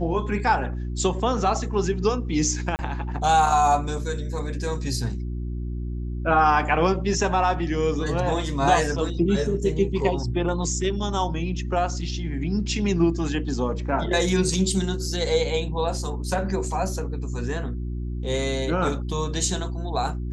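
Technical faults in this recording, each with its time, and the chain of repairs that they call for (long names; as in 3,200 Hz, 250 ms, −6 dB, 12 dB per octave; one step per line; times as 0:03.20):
mains hum 60 Hz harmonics 6 −29 dBFS
0:02.76–0:02.79: drop-out 29 ms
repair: hum removal 60 Hz, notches 6
repair the gap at 0:02.76, 29 ms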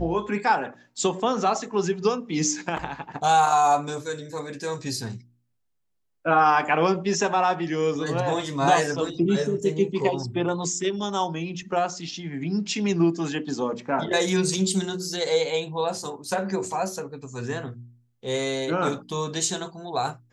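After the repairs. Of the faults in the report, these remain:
none of them is left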